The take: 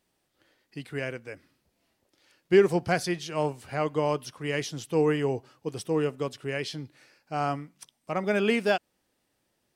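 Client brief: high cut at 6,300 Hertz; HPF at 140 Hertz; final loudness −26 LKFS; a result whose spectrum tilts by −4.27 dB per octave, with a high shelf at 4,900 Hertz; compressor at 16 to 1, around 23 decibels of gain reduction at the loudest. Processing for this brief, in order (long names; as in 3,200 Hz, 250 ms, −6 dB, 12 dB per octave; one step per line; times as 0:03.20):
high-pass filter 140 Hz
low-pass filter 6,300 Hz
high-shelf EQ 4,900 Hz +9 dB
downward compressor 16 to 1, threshold −37 dBFS
level +17 dB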